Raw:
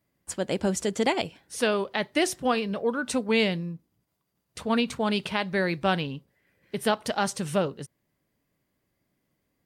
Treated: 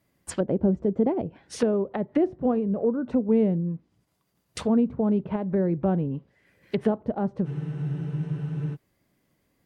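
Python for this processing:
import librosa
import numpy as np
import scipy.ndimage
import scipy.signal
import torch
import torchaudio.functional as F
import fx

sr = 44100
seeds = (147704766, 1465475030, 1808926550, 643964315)

y = fx.env_lowpass_down(x, sr, base_hz=420.0, full_db=-25.0)
y = fx.spec_freeze(y, sr, seeds[0], at_s=7.48, hold_s=1.26)
y = y * librosa.db_to_amplitude(5.5)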